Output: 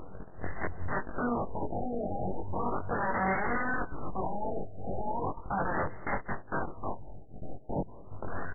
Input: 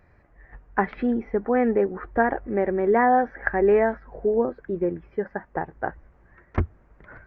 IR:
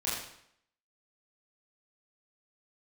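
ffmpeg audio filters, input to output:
-filter_complex "[0:a]agate=range=-19dB:threshold=-53dB:ratio=16:detection=peak,lowshelf=frequency=250:gain=-3,alimiter=limit=-17dB:level=0:latency=1:release=454,acompressor=mode=upward:threshold=-31dB:ratio=2.5,atempo=0.85,aeval=exprs='abs(val(0))':channel_layout=same,aeval=exprs='0.15*(cos(1*acos(clip(val(0)/0.15,-1,1)))-cos(1*PI/2))+0.0133*(cos(3*acos(clip(val(0)/0.15,-1,1)))-cos(3*PI/2))+0.0188*(cos(4*acos(clip(val(0)/0.15,-1,1)))-cos(4*PI/2))+0.0531*(cos(7*acos(clip(val(0)/0.15,-1,1)))-cos(7*PI/2))':channel_layout=same,adynamicsmooth=sensitivity=6.5:basefreq=1000,aeval=exprs='(mod(33.5*val(0)+1,2)-1)/33.5':channel_layout=same,asplit=2[link_01][link_02];[link_02]adelay=21,volume=-3dB[link_03];[link_01][link_03]amix=inputs=2:normalize=0,asplit=2[link_04][link_05];[link_05]adelay=190,highpass=300,lowpass=3400,asoftclip=type=hard:threshold=-35.5dB,volume=-16dB[link_06];[link_04][link_06]amix=inputs=2:normalize=0,afftfilt=real='re*lt(b*sr/1024,810*pow(2200/810,0.5+0.5*sin(2*PI*0.37*pts/sr)))':imag='im*lt(b*sr/1024,810*pow(2200/810,0.5+0.5*sin(2*PI*0.37*pts/sr)))':win_size=1024:overlap=0.75,volume=4dB"

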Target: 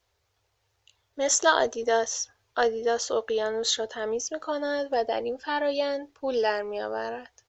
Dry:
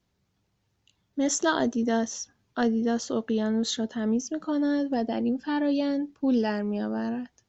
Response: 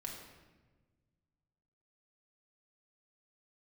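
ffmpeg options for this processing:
-af "firequalizer=gain_entry='entry(100,0);entry(170,-23);entry(450,5)':delay=0.05:min_phase=1"

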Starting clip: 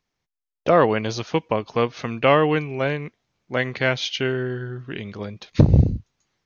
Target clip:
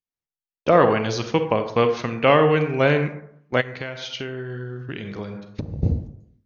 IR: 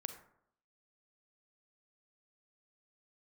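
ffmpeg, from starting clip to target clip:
-filter_complex "[0:a]agate=range=-19dB:threshold=-36dB:ratio=16:detection=peak,dynaudnorm=framelen=110:gausssize=5:maxgain=10dB[link_01];[1:a]atrim=start_sample=2205[link_02];[link_01][link_02]afir=irnorm=-1:irlink=0,asplit=3[link_03][link_04][link_05];[link_03]afade=type=out:start_time=3.6:duration=0.02[link_06];[link_04]acompressor=threshold=-28dB:ratio=12,afade=type=in:start_time=3.6:duration=0.02,afade=type=out:start_time=5.82:duration=0.02[link_07];[link_05]afade=type=in:start_time=5.82:duration=0.02[link_08];[link_06][link_07][link_08]amix=inputs=3:normalize=0"

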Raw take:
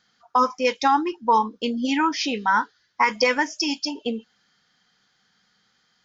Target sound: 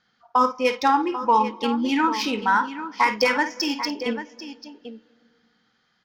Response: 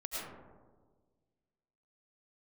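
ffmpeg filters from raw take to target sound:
-filter_complex "[0:a]aecho=1:1:51|791:0.335|0.266,asplit=2[link_01][link_02];[1:a]atrim=start_sample=2205,asetrate=39690,aresample=44100,adelay=93[link_03];[link_02][link_03]afir=irnorm=-1:irlink=0,volume=-23.5dB[link_04];[link_01][link_04]amix=inputs=2:normalize=0,adynamicsmooth=sensitivity=2:basefreq=4500"

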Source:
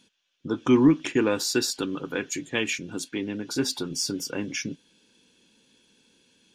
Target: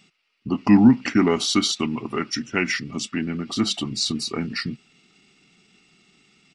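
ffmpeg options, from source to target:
ffmpeg -i in.wav -af "equalizer=frequency=110:width=3.6:gain=-7.5,asetrate=36028,aresample=44100,atempo=1.22405,aresample=22050,aresample=44100,volume=4.5dB" out.wav

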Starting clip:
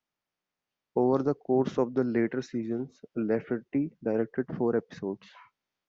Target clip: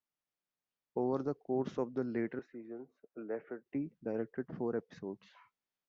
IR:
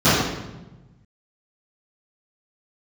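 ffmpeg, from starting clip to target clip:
-filter_complex "[0:a]asettb=1/sr,asplit=3[link_01][link_02][link_03];[link_01]atrim=end=2.394[link_04];[link_02]atrim=start=2.39:end=3.66,asetpts=PTS-STARTPTS,afade=type=in:duration=0.004:curve=qsin,afade=type=out:start_time=1.266:duration=0.004:curve=qsin,acrossover=split=320 2200:gain=0.158 1 0.0794[link_05][link_06][link_07];[link_05][link_06][link_07]amix=inputs=3:normalize=0[link_08];[link_03]atrim=start=3.656[link_09];[link_04][link_08]acrossfade=duration=0.004:curve1=hsin:curve2=qsin[link_10];[link_10][link_09]acrossfade=duration=0.004:curve1=qsin:curve2=hsin,volume=-9dB"

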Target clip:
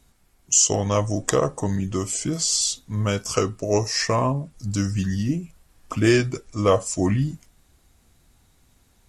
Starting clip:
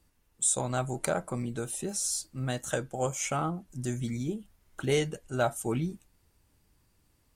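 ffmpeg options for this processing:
ffmpeg -i in.wav -af "acontrast=25,asetrate=35721,aresample=44100,volume=4dB" out.wav

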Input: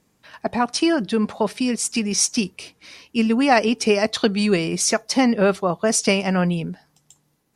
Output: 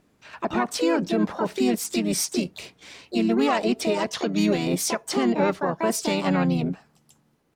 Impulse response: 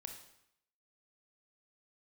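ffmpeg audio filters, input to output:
-filter_complex "[0:a]highshelf=frequency=4300:gain=-10.5,alimiter=limit=-16dB:level=0:latency=1:release=204,asplit=3[link_01][link_02][link_03];[link_02]asetrate=37084,aresample=44100,atempo=1.18921,volume=-10dB[link_04];[link_03]asetrate=66075,aresample=44100,atempo=0.66742,volume=-3dB[link_05];[link_01][link_04][link_05]amix=inputs=3:normalize=0"

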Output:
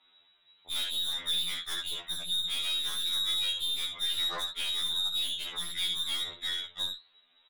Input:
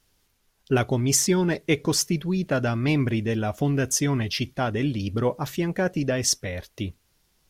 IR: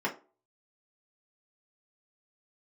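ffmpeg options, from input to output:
-filter_complex "[0:a]lowpass=frequency=3300:width_type=q:width=0.5098,lowpass=frequency=3300:width_type=q:width=0.6013,lowpass=frequency=3300:width_type=q:width=0.9,lowpass=frequency=3300:width_type=q:width=2.563,afreqshift=-3900,asplit=2[link_01][link_02];[link_02]aecho=0:1:56|67:0.15|0.251[link_03];[link_01][link_03]amix=inputs=2:normalize=0,flanger=delay=8.3:depth=3.9:regen=73:speed=1.1:shape=triangular,aeval=exprs='(tanh(50.1*val(0)+0.25)-tanh(0.25))/50.1':channel_layout=same,asplit=2[link_04][link_05];[link_05]acompressor=threshold=-46dB:ratio=6,volume=2dB[link_06];[link_04][link_06]amix=inputs=2:normalize=0,afftfilt=real='re*2*eq(mod(b,4),0)':imag='im*2*eq(mod(b,4),0)':win_size=2048:overlap=0.75,volume=3dB"

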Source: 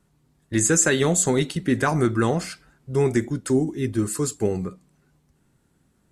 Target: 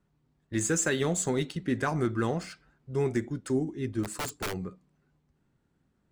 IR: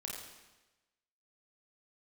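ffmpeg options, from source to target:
-filter_complex "[0:a]adynamicsmooth=sensitivity=7:basefreq=5400,asplit=3[link_01][link_02][link_03];[link_01]afade=type=out:start_time=4.03:duration=0.02[link_04];[link_02]aeval=exprs='(mod(10*val(0)+1,2)-1)/10':channel_layout=same,afade=type=in:start_time=4.03:duration=0.02,afade=type=out:start_time=4.52:duration=0.02[link_05];[link_03]afade=type=in:start_time=4.52:duration=0.02[link_06];[link_04][link_05][link_06]amix=inputs=3:normalize=0,volume=-7.5dB"

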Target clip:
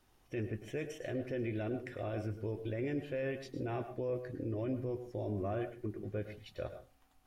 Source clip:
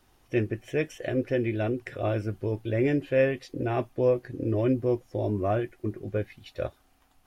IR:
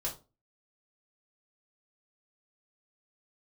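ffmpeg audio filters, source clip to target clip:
-filter_complex "[0:a]alimiter=limit=-23.5dB:level=0:latency=1:release=26,asplit=2[link_01][link_02];[1:a]atrim=start_sample=2205,asetrate=52920,aresample=44100,adelay=103[link_03];[link_02][link_03]afir=irnorm=-1:irlink=0,volume=-11dB[link_04];[link_01][link_04]amix=inputs=2:normalize=0,volume=-6.5dB"

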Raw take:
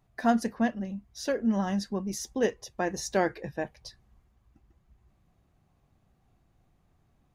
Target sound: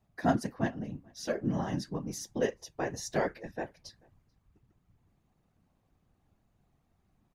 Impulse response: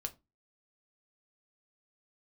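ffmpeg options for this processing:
-filter_complex "[0:a]afftfilt=real='hypot(re,im)*cos(2*PI*random(0))':imag='hypot(re,im)*sin(2*PI*random(1))':win_size=512:overlap=0.75,asplit=2[link_01][link_02];[link_02]adelay=437.3,volume=-28dB,highshelf=frequency=4000:gain=-9.84[link_03];[link_01][link_03]amix=inputs=2:normalize=0,volume=2dB"

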